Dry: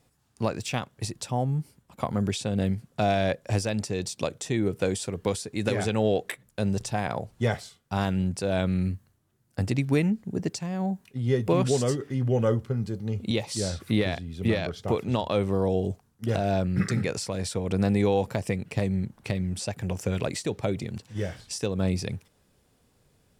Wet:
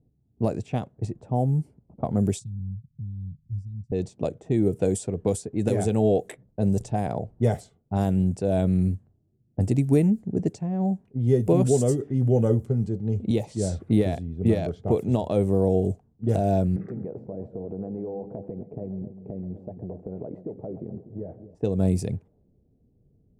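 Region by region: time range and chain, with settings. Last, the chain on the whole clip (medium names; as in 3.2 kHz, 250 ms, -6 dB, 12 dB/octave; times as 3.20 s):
2.39–3.92 s: inverse Chebyshev band-stop 540–1300 Hz, stop band 80 dB + compression 1.5:1, threshold -45 dBFS
16.76–21.55 s: band-pass filter 480 Hz, Q 0.62 + compression, threshold -33 dBFS + two-band feedback delay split 560 Hz, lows 244 ms, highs 131 ms, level -11.5 dB
whole clip: level-controlled noise filter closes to 330 Hz, open at -22.5 dBFS; high-order bell 2.3 kHz -14 dB 2.8 oct; band-stop 540 Hz, Q 12; trim +4 dB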